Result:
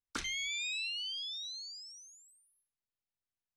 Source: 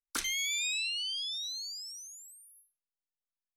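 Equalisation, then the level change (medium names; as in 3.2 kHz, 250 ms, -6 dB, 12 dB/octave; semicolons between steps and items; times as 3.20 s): distance through air 82 m; peaking EQ 92 Hz +11.5 dB 1.9 oct; -2.0 dB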